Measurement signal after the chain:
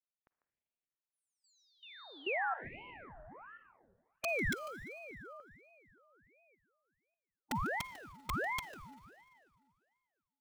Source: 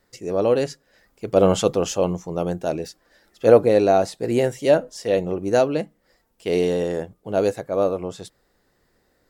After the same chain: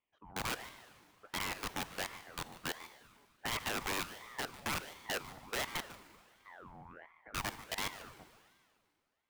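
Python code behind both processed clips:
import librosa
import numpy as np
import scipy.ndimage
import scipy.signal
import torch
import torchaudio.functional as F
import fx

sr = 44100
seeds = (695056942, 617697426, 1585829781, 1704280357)

y = scipy.signal.sosfilt(scipy.signal.butter(4, 1300.0, 'lowpass', fs=sr, output='sos'), x)
y = np.diff(y, prepend=0.0)
y = fx.hpss(y, sr, part='percussive', gain_db=8)
y = fx.peak_eq(y, sr, hz=660.0, db=2.5, octaves=1.1)
y = fx.level_steps(y, sr, step_db=19)
y = (np.mod(10.0 ** (34.5 / 20.0) * y + 1.0, 2.0) - 1.0) / 10.0 ** (34.5 / 20.0)
y = y + 10.0 ** (-16.0 / 20.0) * np.pad(y, (int(147 * sr / 1000.0), 0))[:len(y)]
y = fx.rev_schroeder(y, sr, rt60_s=2.1, comb_ms=38, drr_db=13.0)
y = fx.ring_lfo(y, sr, carrier_hz=940.0, swing_pct=70, hz=1.4)
y = y * 10.0 ** (6.5 / 20.0)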